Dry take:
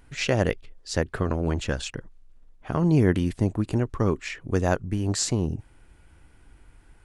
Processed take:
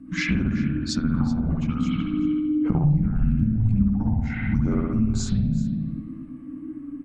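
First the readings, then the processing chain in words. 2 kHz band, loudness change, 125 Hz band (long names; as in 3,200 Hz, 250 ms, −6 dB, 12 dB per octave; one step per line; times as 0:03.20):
−0.5 dB, +2.0 dB, +3.5 dB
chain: in parallel at +1 dB: speech leveller 0.5 s
on the sum: spring reverb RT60 1.1 s, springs 58 ms, chirp 30 ms, DRR −4 dB
downward compressor 10 to 1, threshold −25 dBFS, peak gain reduction 21 dB
mains hum 60 Hz, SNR 15 dB
frequency shifter −320 Hz
on a send: single-tap delay 378 ms −11.5 dB
on the sum: every bin expanded away from the loudest bin 1.5 to 1
level +5 dB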